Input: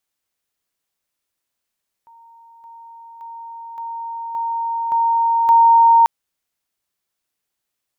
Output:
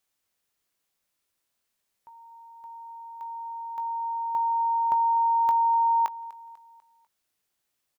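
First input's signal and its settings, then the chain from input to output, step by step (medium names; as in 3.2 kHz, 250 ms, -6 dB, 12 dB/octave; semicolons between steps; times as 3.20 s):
level ladder 923 Hz -43.5 dBFS, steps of 6 dB, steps 7, 0.57 s 0.00 s
compression 12:1, threshold -19 dBFS; doubling 20 ms -11 dB; feedback delay 247 ms, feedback 47%, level -20 dB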